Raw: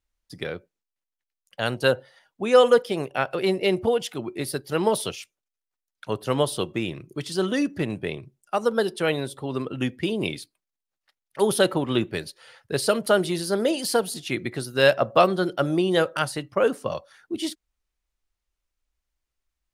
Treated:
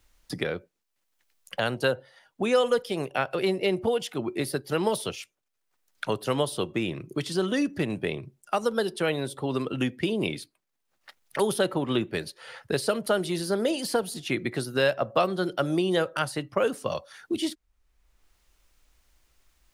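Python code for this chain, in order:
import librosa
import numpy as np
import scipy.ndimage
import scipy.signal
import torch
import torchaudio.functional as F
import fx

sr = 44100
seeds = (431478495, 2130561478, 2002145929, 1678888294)

y = fx.band_squash(x, sr, depth_pct=70)
y = y * 10.0 ** (-3.0 / 20.0)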